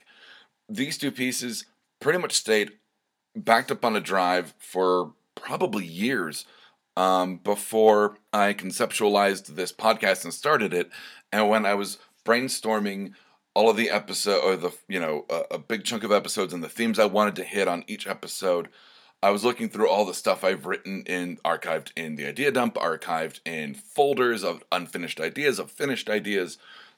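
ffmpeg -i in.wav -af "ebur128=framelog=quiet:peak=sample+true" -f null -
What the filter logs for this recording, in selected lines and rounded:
Integrated loudness:
  I:         -25.2 LUFS
  Threshold: -35.6 LUFS
Loudness range:
  LRA:         3.4 LU
  Threshold: -45.4 LUFS
  LRA low:   -26.8 LUFS
  LRA high:  -23.5 LUFS
Sample peak:
  Peak:       -2.0 dBFS
True peak:
  Peak:       -2.0 dBFS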